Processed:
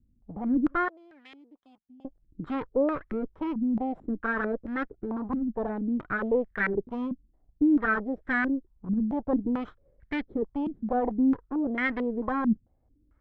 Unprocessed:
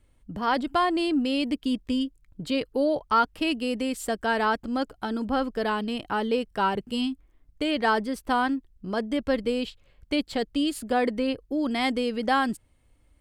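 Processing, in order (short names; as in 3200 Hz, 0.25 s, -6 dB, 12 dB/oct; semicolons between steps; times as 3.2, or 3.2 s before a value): minimum comb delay 0.55 ms; in parallel at -11 dB: wavefolder -24 dBFS; 0.88–2.05 on the sum: differentiator; stepped low-pass 4.5 Hz 220–1800 Hz; gain -6.5 dB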